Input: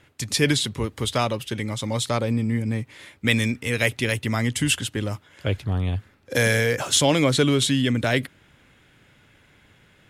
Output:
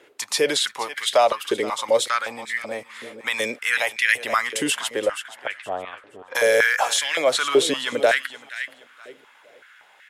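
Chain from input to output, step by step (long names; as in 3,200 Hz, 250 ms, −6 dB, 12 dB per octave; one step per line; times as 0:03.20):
0:05.06–0:06.35: low-pass filter 2,400 Hz 12 dB per octave
on a send: repeating echo 472 ms, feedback 24%, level −15 dB
on the sum: brickwall limiter −13.5 dBFS, peak gain reduction 8.5 dB
high-pass on a step sequencer 5.3 Hz 420–1,800 Hz
level +2 dB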